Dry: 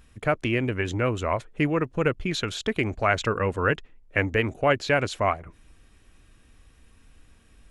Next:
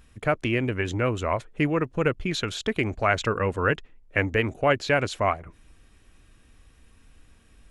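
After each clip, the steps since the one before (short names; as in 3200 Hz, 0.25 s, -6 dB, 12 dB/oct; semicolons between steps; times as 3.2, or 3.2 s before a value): nothing audible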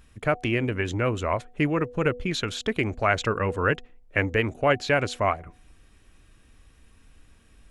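de-hum 245.4 Hz, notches 3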